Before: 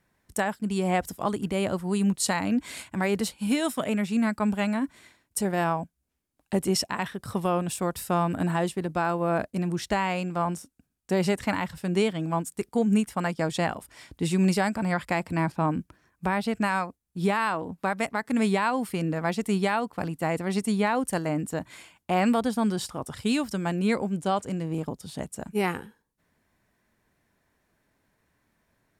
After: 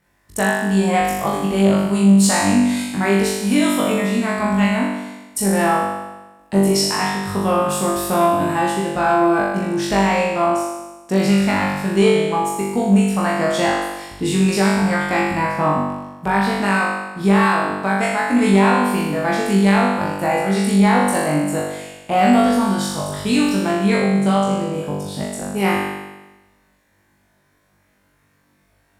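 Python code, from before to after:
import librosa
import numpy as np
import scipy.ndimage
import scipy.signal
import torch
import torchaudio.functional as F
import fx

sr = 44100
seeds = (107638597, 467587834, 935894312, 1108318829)

y = fx.room_flutter(x, sr, wall_m=3.5, rt60_s=1.1)
y = fx.cheby_harmonics(y, sr, harmonics=(5,), levels_db=(-24,), full_scale_db=-3.0)
y = F.gain(torch.from_numpy(y), 1.5).numpy()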